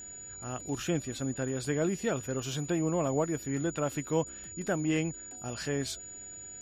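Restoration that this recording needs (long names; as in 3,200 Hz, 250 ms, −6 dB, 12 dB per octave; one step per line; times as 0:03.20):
notch filter 6,900 Hz, Q 30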